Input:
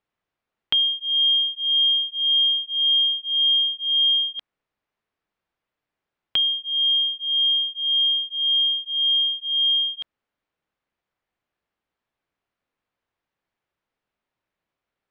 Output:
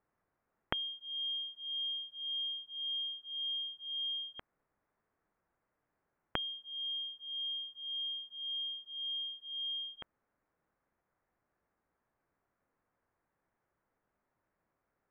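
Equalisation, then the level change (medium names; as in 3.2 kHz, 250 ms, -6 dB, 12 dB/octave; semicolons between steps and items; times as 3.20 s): low-pass 1.9 kHz 24 dB/octave; distance through air 190 m; +4.0 dB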